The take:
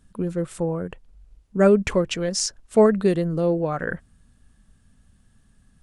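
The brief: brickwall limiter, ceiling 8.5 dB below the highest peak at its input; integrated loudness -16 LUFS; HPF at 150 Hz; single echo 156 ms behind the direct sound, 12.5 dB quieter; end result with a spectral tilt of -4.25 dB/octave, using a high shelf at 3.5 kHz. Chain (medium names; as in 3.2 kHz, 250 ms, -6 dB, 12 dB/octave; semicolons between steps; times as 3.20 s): high-pass 150 Hz; treble shelf 3.5 kHz +7.5 dB; peak limiter -11.5 dBFS; delay 156 ms -12.5 dB; trim +8 dB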